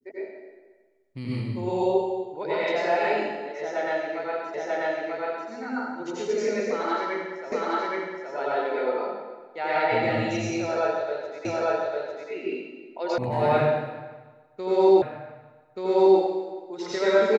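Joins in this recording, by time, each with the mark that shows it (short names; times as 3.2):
4.54 repeat of the last 0.94 s
7.52 repeat of the last 0.82 s
11.45 repeat of the last 0.85 s
13.18 sound cut off
15.02 repeat of the last 1.18 s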